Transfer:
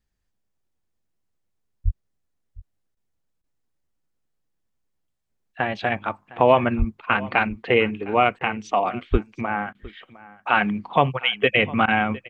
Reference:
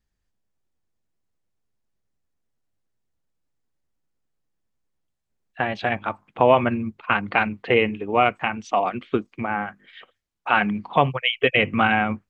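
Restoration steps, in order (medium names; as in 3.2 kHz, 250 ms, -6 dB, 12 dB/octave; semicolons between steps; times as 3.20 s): 1.84–1.96 s: high-pass 140 Hz 24 dB/octave; 6.78–6.90 s: high-pass 140 Hz 24 dB/octave; 9.11–9.23 s: high-pass 140 Hz 24 dB/octave; interpolate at 2.95/3.42/8.39/9.73/11.86 s, 17 ms; inverse comb 708 ms -20 dB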